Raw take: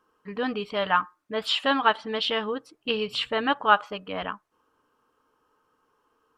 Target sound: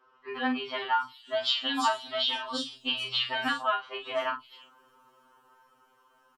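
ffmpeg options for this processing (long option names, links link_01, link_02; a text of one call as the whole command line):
ffmpeg -i in.wav -filter_complex "[0:a]asettb=1/sr,asplit=3[link_01][link_02][link_03];[link_01]atrim=end=0.864[link_04];[link_02]atrim=start=0.86:end=3.11,asetpts=PTS-STARTPTS,afade=type=in:duration=0.004:curve=qsin,afade=type=out:start_time=2.246:duration=0.004:curve=qsin,equalizer=frequency=500:width_type=o:width=1:gain=-5,equalizer=frequency=2000:width_type=o:width=1:gain=-7,equalizer=frequency=4000:width_type=o:width=1:gain=3,equalizer=frequency=8000:width_type=o:width=1:gain=5[link_05];[link_03]atrim=start=3.106[link_06];[link_04][link_05]acrossfade=duration=0.004:curve1=hsin:curve2=qsin[link_07];[link_07][link_06]acrossfade=duration=0.004:curve1=qsin:curve2=hsin,dynaudnorm=framelen=260:gausssize=11:maxgain=11.5dB,lowshelf=frequency=280:gain=-8.5,asplit=2[link_08][link_09];[link_09]adelay=40,volume=-7.5dB[link_10];[link_08][link_10]amix=inputs=2:normalize=0,acrossover=split=250|4900[link_11][link_12][link_13];[link_11]adelay=40[link_14];[link_13]adelay=340[link_15];[link_14][link_12][link_15]amix=inputs=3:normalize=0,acompressor=threshold=-37dB:ratio=2.5,afftfilt=real='re*2.45*eq(mod(b,6),0)':imag='im*2.45*eq(mod(b,6),0)':win_size=2048:overlap=0.75,volume=8.5dB" out.wav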